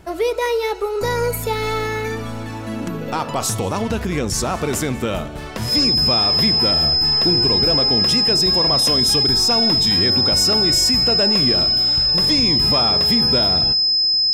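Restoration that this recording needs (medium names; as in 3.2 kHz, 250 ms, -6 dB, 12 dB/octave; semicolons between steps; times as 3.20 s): band-stop 5.1 kHz, Q 30; inverse comb 192 ms -23.5 dB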